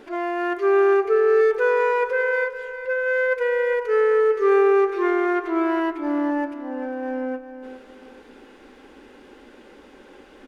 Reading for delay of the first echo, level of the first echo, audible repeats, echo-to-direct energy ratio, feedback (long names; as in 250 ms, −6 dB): 404 ms, −11.5 dB, 3, −11.0 dB, 33%